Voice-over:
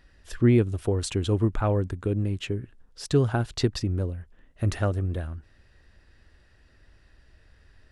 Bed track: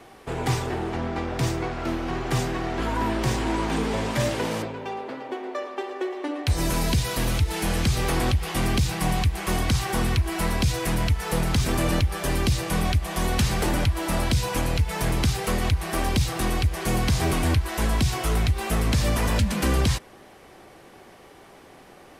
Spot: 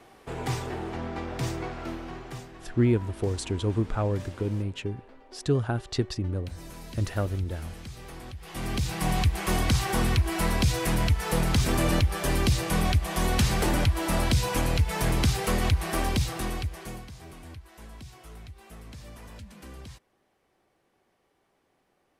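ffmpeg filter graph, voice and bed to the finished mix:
-filter_complex "[0:a]adelay=2350,volume=-3dB[a];[1:a]volume=12.5dB,afade=t=out:st=1.67:d=0.81:silence=0.211349,afade=t=in:st=8.35:d=0.9:silence=0.125893,afade=t=out:st=15.85:d=1.23:silence=0.0841395[b];[a][b]amix=inputs=2:normalize=0"

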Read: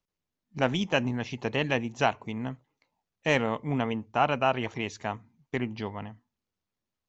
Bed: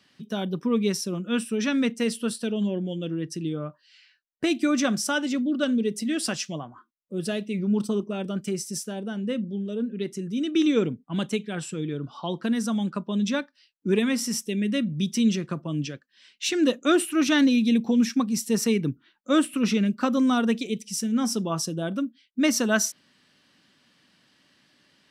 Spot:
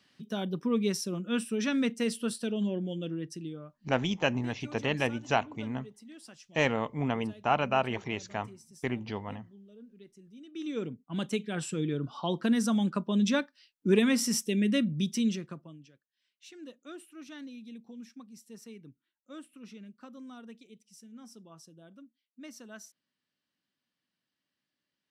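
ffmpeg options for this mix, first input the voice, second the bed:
-filter_complex "[0:a]adelay=3300,volume=-2dB[a];[1:a]volume=17.5dB,afade=t=out:st=3:d=0.88:silence=0.11885,afade=t=in:st=10.5:d=1.27:silence=0.0794328,afade=t=out:st=14.71:d=1.08:silence=0.0630957[b];[a][b]amix=inputs=2:normalize=0"

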